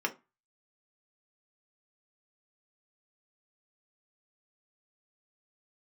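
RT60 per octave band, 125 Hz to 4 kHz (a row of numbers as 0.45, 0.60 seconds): 0.35, 0.30, 0.20, 0.30, 0.25, 0.15 seconds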